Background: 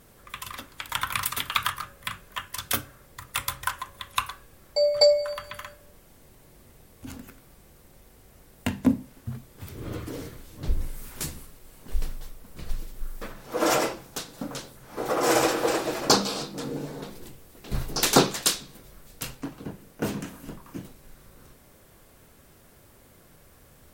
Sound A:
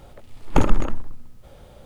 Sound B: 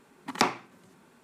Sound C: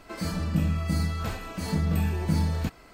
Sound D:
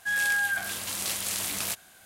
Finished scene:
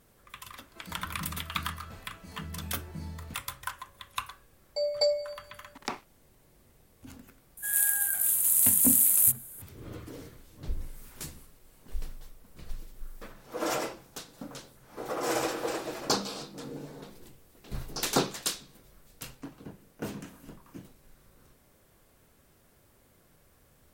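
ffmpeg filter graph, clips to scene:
ffmpeg -i bed.wav -i cue0.wav -i cue1.wav -i cue2.wav -i cue3.wav -filter_complex "[0:a]volume=-8dB[link_01];[2:a]aeval=exprs='sgn(val(0))*max(abs(val(0))-0.00841,0)':channel_layout=same[link_02];[4:a]aexciter=amount=14.2:drive=6.6:freq=7800[link_03];[3:a]atrim=end=2.93,asetpts=PTS-STARTPTS,volume=-15.5dB,afade=type=in:duration=0.004:curve=hsin,afade=type=out:start_time=2.926:duration=0.004:curve=hsin,adelay=660[link_04];[link_02]atrim=end=1.23,asetpts=PTS-STARTPTS,volume=-10.5dB,afade=type=in:duration=0.004:curve=hsin,afade=type=out:start_time=1.226:duration=0.004:curve=hsin,adelay=5470[link_05];[link_03]atrim=end=2.05,asetpts=PTS-STARTPTS,volume=-12dB,afade=type=in:duration=0.004:curve=hsin,afade=type=out:start_time=2.046:duration=0.004:curve=hsin,adelay=7570[link_06];[link_01][link_04][link_05][link_06]amix=inputs=4:normalize=0" out.wav

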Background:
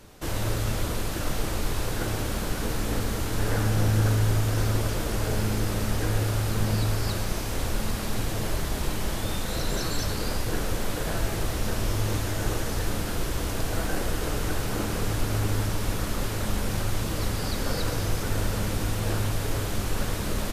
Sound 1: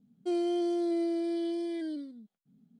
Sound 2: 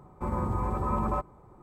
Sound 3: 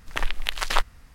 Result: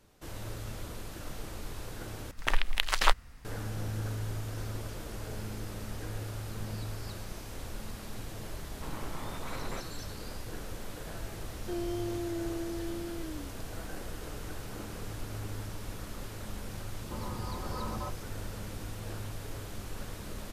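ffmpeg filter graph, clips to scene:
ffmpeg -i bed.wav -i cue0.wav -i cue1.wav -i cue2.wav -filter_complex "[2:a]asplit=2[link_01][link_02];[0:a]volume=-13dB[link_03];[link_01]aeval=exprs='abs(val(0))':channel_layout=same[link_04];[link_03]asplit=2[link_05][link_06];[link_05]atrim=end=2.314[link_07];[3:a]atrim=end=1.14,asetpts=PTS-STARTPTS,volume=-1.5dB[link_08];[link_06]atrim=start=3.446[link_09];[link_04]atrim=end=1.62,asetpts=PTS-STARTPTS,volume=-9.5dB,afade=type=in:duration=0.004:curve=hsin,afade=type=out:start_time=1.616:duration=0.004:curve=hsin,adelay=8600[link_10];[1:a]atrim=end=2.79,asetpts=PTS-STARTPTS,volume=-6.5dB,afade=type=in:duration=0.004:curve=hsin,afade=type=out:start_time=2.786:duration=0.004:curve=hsin,adelay=11420[link_11];[link_02]atrim=end=1.62,asetpts=PTS-STARTPTS,volume=-10dB,afade=type=in:duration=0.004:curve=hsin,afade=type=out:start_time=1.616:duration=0.004:curve=hsin,adelay=16890[link_12];[link_07][link_08]acrossfade=duration=0.004:curve1=hsin:curve2=hsin[link_13];[link_13][link_09]acrossfade=duration=0.004:curve1=hsin:curve2=hsin[link_14];[link_14][link_10][link_11][link_12]amix=inputs=4:normalize=0" out.wav

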